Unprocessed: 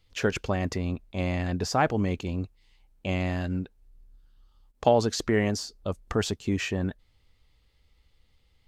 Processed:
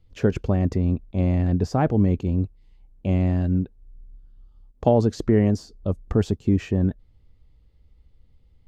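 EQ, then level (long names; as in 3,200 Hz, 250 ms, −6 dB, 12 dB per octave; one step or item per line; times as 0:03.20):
tilt shelving filter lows +9.5 dB, about 700 Hz
0.0 dB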